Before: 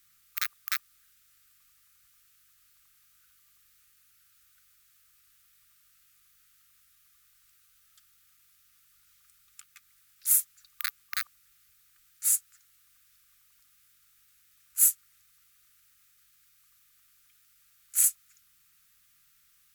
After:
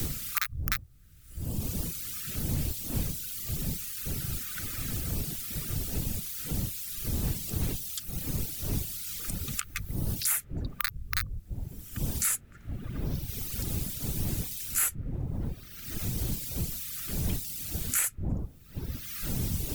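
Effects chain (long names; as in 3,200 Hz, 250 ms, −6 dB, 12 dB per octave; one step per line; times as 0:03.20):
wind on the microphone 120 Hz −45 dBFS
in parallel at −4 dB: soft clipping −23 dBFS, distortion −8 dB
on the sum: reverb reduction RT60 1.3 s
multiband upward and downward compressor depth 100%
level +8 dB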